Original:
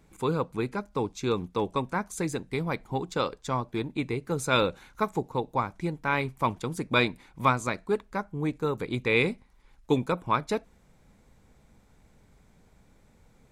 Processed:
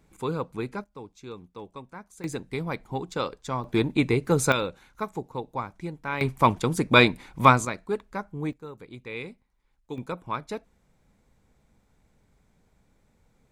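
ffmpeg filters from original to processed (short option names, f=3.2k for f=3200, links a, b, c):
-af "asetnsamples=n=441:p=0,asendcmd='0.84 volume volume -13dB;2.24 volume volume -1dB;3.64 volume volume 7.5dB;4.52 volume volume -4dB;6.21 volume volume 7dB;7.65 volume volume -1.5dB;8.53 volume volume -12.5dB;9.98 volume volume -5.5dB',volume=-2dB"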